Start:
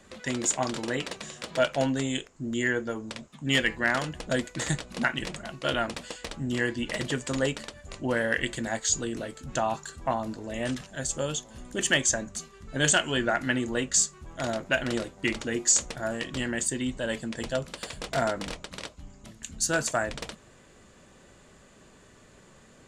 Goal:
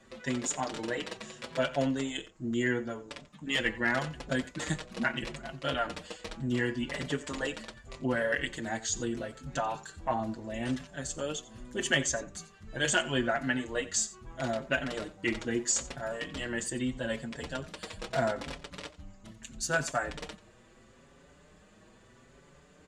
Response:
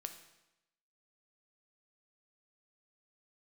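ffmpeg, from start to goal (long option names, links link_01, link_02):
-filter_complex "[0:a]highshelf=frequency=6200:gain=-8,aecho=1:1:89:0.126,asplit=2[link_01][link_02];[link_02]adelay=5.7,afreqshift=0.77[link_03];[link_01][link_03]amix=inputs=2:normalize=1"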